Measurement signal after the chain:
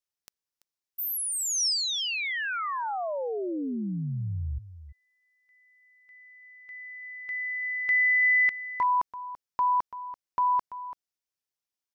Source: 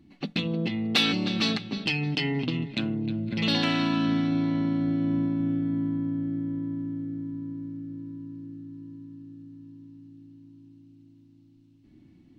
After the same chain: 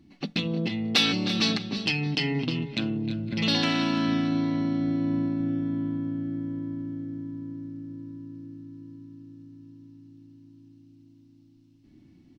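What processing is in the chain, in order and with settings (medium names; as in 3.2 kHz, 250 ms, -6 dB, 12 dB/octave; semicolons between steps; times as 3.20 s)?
peaking EQ 5.4 kHz +6 dB 0.51 oct; delay 336 ms -14 dB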